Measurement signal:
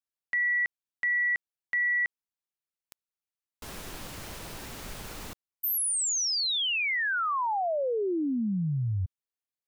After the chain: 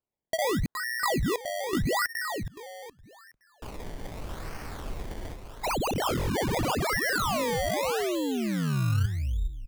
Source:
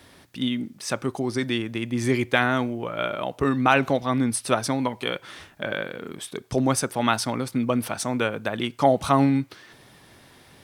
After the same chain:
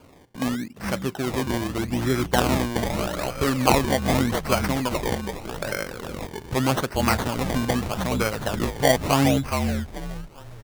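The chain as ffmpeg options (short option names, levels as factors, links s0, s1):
-filter_complex "[0:a]asplit=5[s0][s1][s2][s3][s4];[s1]adelay=419,afreqshift=-52,volume=0.501[s5];[s2]adelay=838,afreqshift=-104,volume=0.155[s6];[s3]adelay=1257,afreqshift=-156,volume=0.0484[s7];[s4]adelay=1676,afreqshift=-208,volume=0.015[s8];[s0][s5][s6][s7][s8]amix=inputs=5:normalize=0,asubboost=boost=2:cutoff=120,acrusher=samples=23:mix=1:aa=0.000001:lfo=1:lforange=23:lforate=0.82"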